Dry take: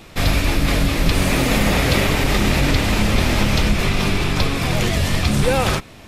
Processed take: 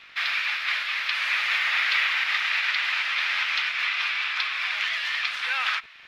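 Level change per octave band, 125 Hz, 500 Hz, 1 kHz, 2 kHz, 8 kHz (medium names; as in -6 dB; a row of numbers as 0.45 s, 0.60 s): under -40 dB, under -30 dB, -8.0 dB, +1.0 dB, -18.0 dB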